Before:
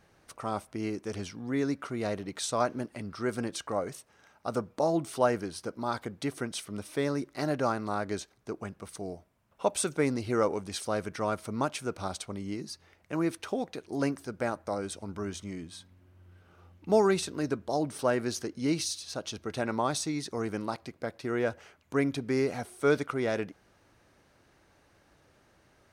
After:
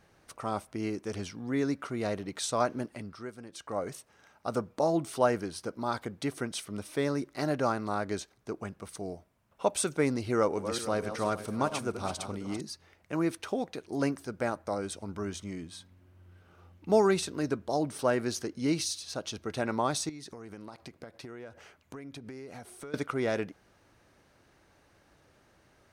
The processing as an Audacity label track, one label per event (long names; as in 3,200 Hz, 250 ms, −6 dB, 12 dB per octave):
2.890000	3.900000	duck −13.5 dB, fades 0.43 s
10.330000	12.610000	feedback delay that plays each chunk backwards 228 ms, feedback 51%, level −9 dB
20.090000	22.940000	downward compressor 12 to 1, threshold −40 dBFS